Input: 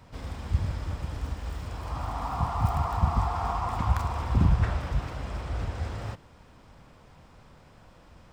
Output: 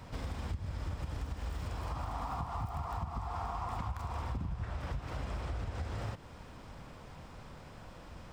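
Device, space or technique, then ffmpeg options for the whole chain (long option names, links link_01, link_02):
serial compression, peaks first: -af "acompressor=threshold=-32dB:ratio=6,acompressor=threshold=-42dB:ratio=2,volume=3.5dB"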